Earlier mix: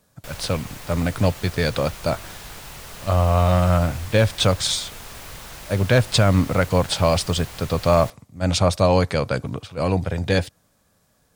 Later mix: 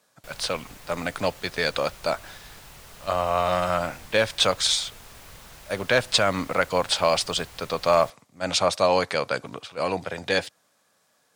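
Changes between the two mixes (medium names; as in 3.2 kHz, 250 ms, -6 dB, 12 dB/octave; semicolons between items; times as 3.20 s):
speech: add frequency weighting A; background -8.0 dB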